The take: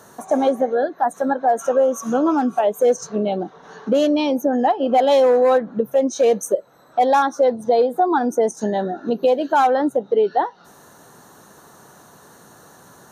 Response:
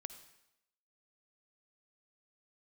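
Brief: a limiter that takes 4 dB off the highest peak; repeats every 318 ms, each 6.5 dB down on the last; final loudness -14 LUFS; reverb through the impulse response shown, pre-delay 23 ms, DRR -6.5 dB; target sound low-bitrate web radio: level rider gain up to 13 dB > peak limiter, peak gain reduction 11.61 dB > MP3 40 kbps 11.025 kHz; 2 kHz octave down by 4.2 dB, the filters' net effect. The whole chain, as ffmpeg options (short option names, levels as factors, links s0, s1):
-filter_complex "[0:a]equalizer=f=2000:t=o:g=-6,alimiter=limit=0.251:level=0:latency=1,aecho=1:1:318|636|954|1272|1590|1908:0.473|0.222|0.105|0.0491|0.0231|0.0109,asplit=2[s0][s1];[1:a]atrim=start_sample=2205,adelay=23[s2];[s1][s2]afir=irnorm=-1:irlink=0,volume=3.35[s3];[s0][s3]amix=inputs=2:normalize=0,dynaudnorm=m=4.47,alimiter=limit=0.237:level=0:latency=1,volume=2.24" -ar 11025 -c:a libmp3lame -b:a 40k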